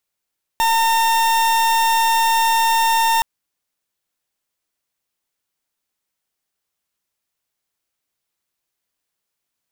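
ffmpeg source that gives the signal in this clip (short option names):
-f lavfi -i "aevalsrc='0.158*(2*lt(mod(909*t,1),0.41)-1)':d=2.62:s=44100"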